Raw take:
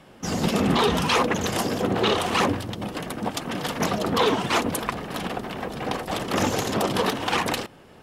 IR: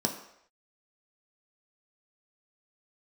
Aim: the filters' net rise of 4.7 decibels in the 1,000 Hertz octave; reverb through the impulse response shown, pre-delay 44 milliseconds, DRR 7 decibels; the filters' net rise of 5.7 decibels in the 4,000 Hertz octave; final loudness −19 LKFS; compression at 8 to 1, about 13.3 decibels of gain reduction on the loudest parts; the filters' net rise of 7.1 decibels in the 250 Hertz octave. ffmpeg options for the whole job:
-filter_complex "[0:a]equalizer=frequency=250:width_type=o:gain=8.5,equalizer=frequency=1000:width_type=o:gain=5,equalizer=frequency=4000:width_type=o:gain=7,acompressor=threshold=-26dB:ratio=8,asplit=2[link_01][link_02];[1:a]atrim=start_sample=2205,adelay=44[link_03];[link_02][link_03]afir=irnorm=-1:irlink=0,volume=-14dB[link_04];[link_01][link_04]amix=inputs=2:normalize=0,volume=8dB"

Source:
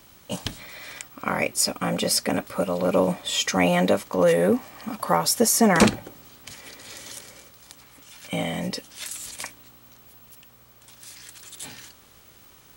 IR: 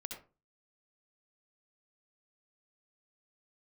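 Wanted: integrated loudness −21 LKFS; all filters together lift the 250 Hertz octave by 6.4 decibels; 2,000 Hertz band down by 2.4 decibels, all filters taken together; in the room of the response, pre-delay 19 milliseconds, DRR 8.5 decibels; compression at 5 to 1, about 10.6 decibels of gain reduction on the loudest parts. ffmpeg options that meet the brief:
-filter_complex "[0:a]equalizer=frequency=250:width_type=o:gain=8,equalizer=frequency=2000:width_type=o:gain=-3,acompressor=threshold=-19dB:ratio=5,asplit=2[link_01][link_02];[1:a]atrim=start_sample=2205,adelay=19[link_03];[link_02][link_03]afir=irnorm=-1:irlink=0,volume=-6.5dB[link_04];[link_01][link_04]amix=inputs=2:normalize=0,volume=4dB"

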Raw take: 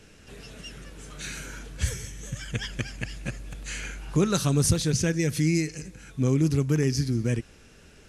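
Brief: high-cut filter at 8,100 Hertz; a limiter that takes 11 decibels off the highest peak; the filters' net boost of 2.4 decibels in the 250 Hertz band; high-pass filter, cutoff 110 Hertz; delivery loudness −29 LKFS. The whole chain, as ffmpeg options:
ffmpeg -i in.wav -af "highpass=110,lowpass=8100,equalizer=frequency=250:width_type=o:gain=4,volume=2dB,alimiter=limit=-17.5dB:level=0:latency=1" out.wav

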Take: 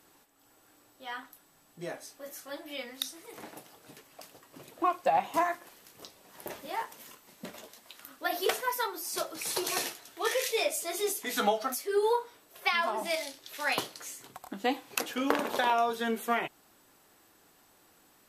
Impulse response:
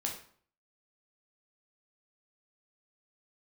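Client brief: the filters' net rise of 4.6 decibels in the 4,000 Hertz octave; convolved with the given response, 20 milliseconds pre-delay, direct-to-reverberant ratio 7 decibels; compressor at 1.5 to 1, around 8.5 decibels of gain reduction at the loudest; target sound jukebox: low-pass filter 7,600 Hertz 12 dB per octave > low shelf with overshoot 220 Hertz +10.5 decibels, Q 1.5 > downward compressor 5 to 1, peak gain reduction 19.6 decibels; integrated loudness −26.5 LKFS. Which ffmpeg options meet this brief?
-filter_complex "[0:a]equalizer=frequency=4000:width_type=o:gain=6,acompressor=threshold=-46dB:ratio=1.5,asplit=2[link_01][link_02];[1:a]atrim=start_sample=2205,adelay=20[link_03];[link_02][link_03]afir=irnorm=-1:irlink=0,volume=-9dB[link_04];[link_01][link_04]amix=inputs=2:normalize=0,lowpass=7600,lowshelf=frequency=220:width_type=q:width=1.5:gain=10.5,acompressor=threshold=-50dB:ratio=5,volume=25.5dB"

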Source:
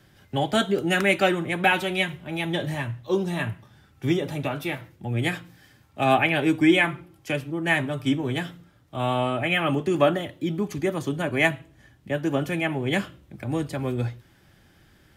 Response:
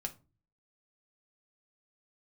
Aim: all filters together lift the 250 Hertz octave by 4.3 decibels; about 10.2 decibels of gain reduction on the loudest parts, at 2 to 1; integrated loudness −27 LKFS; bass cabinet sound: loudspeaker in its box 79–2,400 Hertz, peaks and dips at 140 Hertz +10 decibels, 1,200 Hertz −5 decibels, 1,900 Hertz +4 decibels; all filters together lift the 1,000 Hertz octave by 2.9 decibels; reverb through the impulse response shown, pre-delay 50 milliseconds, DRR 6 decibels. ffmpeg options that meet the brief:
-filter_complex "[0:a]equalizer=frequency=250:width_type=o:gain=4.5,equalizer=frequency=1000:width_type=o:gain=5,acompressor=threshold=-30dB:ratio=2,asplit=2[link_01][link_02];[1:a]atrim=start_sample=2205,adelay=50[link_03];[link_02][link_03]afir=irnorm=-1:irlink=0,volume=-5.5dB[link_04];[link_01][link_04]amix=inputs=2:normalize=0,highpass=frequency=79:width=0.5412,highpass=frequency=79:width=1.3066,equalizer=frequency=140:width_type=q:width=4:gain=10,equalizer=frequency=1200:width_type=q:width=4:gain=-5,equalizer=frequency=1900:width_type=q:width=4:gain=4,lowpass=frequency=2400:width=0.5412,lowpass=frequency=2400:width=1.3066,volume=0.5dB"

